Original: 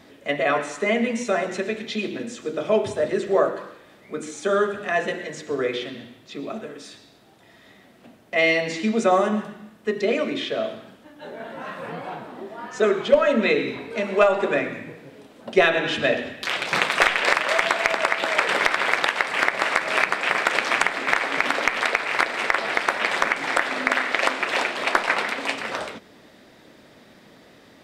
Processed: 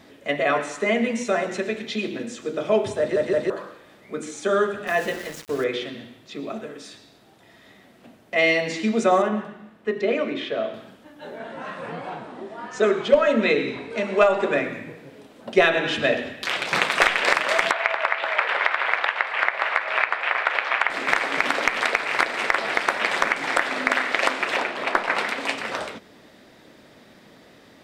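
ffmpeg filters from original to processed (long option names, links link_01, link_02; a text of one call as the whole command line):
ffmpeg -i in.wav -filter_complex "[0:a]asettb=1/sr,asplit=3[link_01][link_02][link_03];[link_01]atrim=end=4.874[link_04];[link_02]atrim=start=4.87:end=5.64,asetpts=PTS-STARTPTS,afade=type=in:duration=0.004:curve=qsin,afade=type=out:start_time=0.766:duration=0.004:curve=qsin,aeval=exprs='val(0)*gte(abs(val(0)),0.0188)':channel_layout=same[link_05];[link_03]atrim=start=5.636[link_06];[link_04][link_05]acrossfade=duration=0.004:curve1=hsin:curve2=qsin[link_07];[link_07][link_06]acrossfade=duration=0.004:curve1=qsin:curve2=hsin,asettb=1/sr,asplit=3[link_08][link_09][link_10];[link_08]atrim=end=9.224[link_11];[link_09]atrim=start=9.22:end=10.74,asetpts=PTS-STARTPTS,afade=type=in:duration=0.004:curve=qsin,afade=type=out:start_time=1.516:duration=0.004:curve=qsin,bass=frequency=250:gain=-3,treble=frequency=4000:gain=-11[link_12];[link_10]atrim=start=10.736[link_13];[link_11][link_12]acrossfade=duration=0.004:curve1=hsin:curve2=qsin[link_14];[link_14][link_13]acrossfade=duration=0.004:curve1=qsin:curve2=hsin,asettb=1/sr,asplit=3[link_15][link_16][link_17];[link_15]atrim=end=11.384[link_18];[link_16]atrim=start=11.38:end=14.53,asetpts=PTS-STARTPTS,afade=type=in:duration=0.004:curve=qsin,afade=type=out:start_time=3.146:duration=0.004:curve=qsin,lowpass=frequency=10000:width=0.5412,lowpass=frequency=10000:width=1.3066[link_19];[link_17]atrim=start=14.526[link_20];[link_18][link_19]acrossfade=duration=0.004:curve1=hsin:curve2=qsin[link_21];[link_21][link_20]acrossfade=duration=0.004:curve1=qsin:curve2=hsin,asettb=1/sr,asplit=3[link_22][link_23][link_24];[link_22]atrim=end=17.714[link_25];[link_23]atrim=start=17.71:end=20.9,asetpts=PTS-STARTPTS,afade=type=in:duration=0.004:curve=qsin,afade=type=out:start_time=3.186:duration=0.004:curve=qsin,acrossover=split=500 3500:gain=0.0631 1 0.0794[link_26][link_27][link_28];[link_26][link_27][link_28]amix=inputs=3:normalize=0[link_29];[link_24]atrim=start=20.896[link_30];[link_25][link_29]acrossfade=duration=0.004:curve1=hsin:curve2=qsin[link_31];[link_31][link_30]acrossfade=duration=0.004:curve1=qsin:curve2=hsin,asettb=1/sr,asplit=3[link_32][link_33][link_34];[link_32]atrim=end=24.564[link_35];[link_33]atrim=start=24.56:end=25.15,asetpts=PTS-STARTPTS,afade=type=in:duration=0.004:curve=qsin,afade=type=out:start_time=0.586:duration=0.004:curve=qsin,equalizer=frequency=10000:width_type=o:width=2.7:gain=-8.5[link_36];[link_34]atrim=start=25.146[link_37];[link_35][link_36]acrossfade=duration=0.004:curve1=hsin:curve2=qsin[link_38];[link_38][link_37]acrossfade=duration=0.004:curve1=qsin:curve2=hsin,asplit=4[link_39][link_40][link_41][link_42];[link_39]atrim=end=3.162[link_43];[link_40]atrim=start=2.988:end=3.162[link_44];[link_41]atrim=start=2.988:end=3.162[link_45];[link_42]atrim=start=3.498[link_46];[link_43][link_44]acrossfade=duration=0.004:curve1=hsin:curve2=hsin[link_47];[link_47][link_45]acrossfade=duration=0.004:curve1=hsin:curve2=hsin[link_48];[link_48][link_46]acrossfade=duration=0.004:curve1=hsin:curve2=hsin" out.wav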